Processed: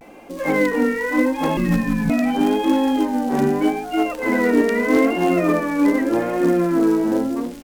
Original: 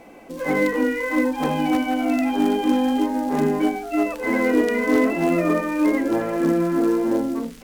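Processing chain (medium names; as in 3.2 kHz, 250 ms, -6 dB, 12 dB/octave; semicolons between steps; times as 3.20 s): 1.57–2.10 s: frequency shift -480 Hz; echo from a far wall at 55 m, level -18 dB; vibrato 0.82 Hz 84 cents; trim +2 dB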